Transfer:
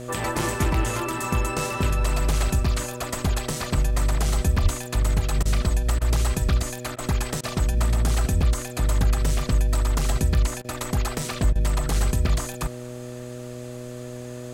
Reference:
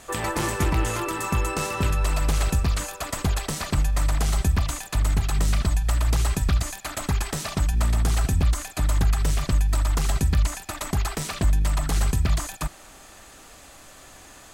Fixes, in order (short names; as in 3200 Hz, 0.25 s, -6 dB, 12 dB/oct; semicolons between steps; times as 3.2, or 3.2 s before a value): de-hum 122.9 Hz, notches 5; 4.62–4.74 HPF 140 Hz 24 dB/oct; interpolate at 5.43/5.99/6.96/7.41/10.62/11.53, 23 ms